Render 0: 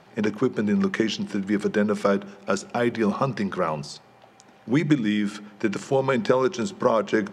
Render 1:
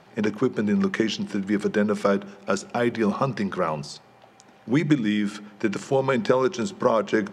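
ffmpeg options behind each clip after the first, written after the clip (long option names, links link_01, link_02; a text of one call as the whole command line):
ffmpeg -i in.wav -af anull out.wav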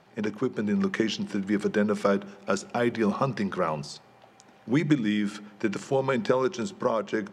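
ffmpeg -i in.wav -af "dynaudnorm=framelen=160:gausssize=9:maxgain=3.5dB,volume=-5.5dB" out.wav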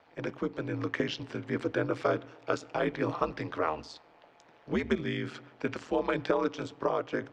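ffmpeg -i in.wav -filter_complex "[0:a]acrossover=split=250 5100:gain=0.2 1 0.158[link_01][link_02][link_03];[link_01][link_02][link_03]amix=inputs=3:normalize=0,aeval=exprs='val(0)*sin(2*PI*80*n/s)':channel_layout=same" out.wav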